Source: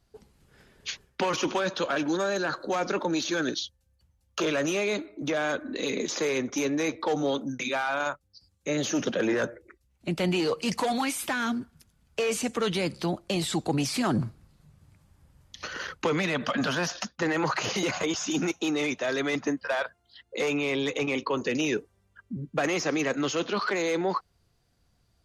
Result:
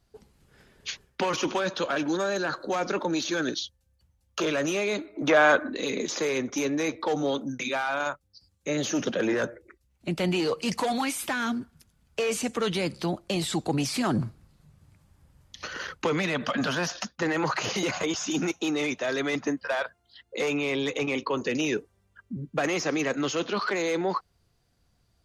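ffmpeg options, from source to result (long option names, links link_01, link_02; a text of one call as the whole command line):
ffmpeg -i in.wav -filter_complex "[0:a]asplit=3[link_01][link_02][link_03];[link_01]afade=type=out:start_time=5.14:duration=0.02[link_04];[link_02]equalizer=frequency=1100:width=0.39:gain=11.5,afade=type=in:start_time=5.14:duration=0.02,afade=type=out:start_time=5.68:duration=0.02[link_05];[link_03]afade=type=in:start_time=5.68:duration=0.02[link_06];[link_04][link_05][link_06]amix=inputs=3:normalize=0" out.wav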